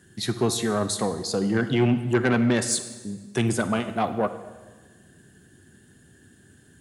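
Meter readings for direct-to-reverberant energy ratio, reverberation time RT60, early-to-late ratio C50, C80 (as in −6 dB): 11.0 dB, 1.4 s, 11.5 dB, 13.0 dB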